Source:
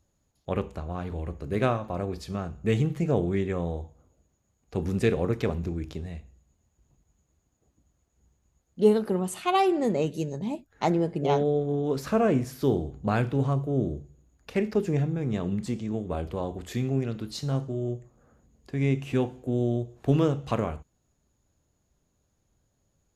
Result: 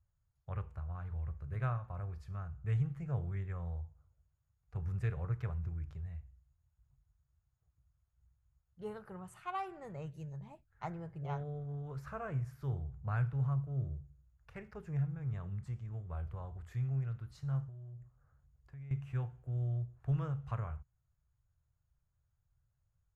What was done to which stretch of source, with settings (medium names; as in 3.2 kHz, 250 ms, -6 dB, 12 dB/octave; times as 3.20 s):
17.64–18.91 s: compression, threshold -36 dBFS
whole clip: FFT filter 130 Hz 0 dB, 240 Hz -27 dB, 1.4 kHz -5 dB, 3.7 kHz -22 dB, 7.5 kHz -19 dB; trim -4 dB